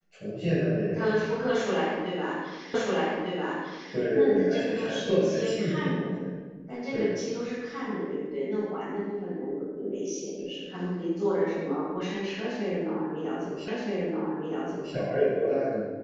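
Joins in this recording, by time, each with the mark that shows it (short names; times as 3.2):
2.74 repeat of the last 1.2 s
13.68 repeat of the last 1.27 s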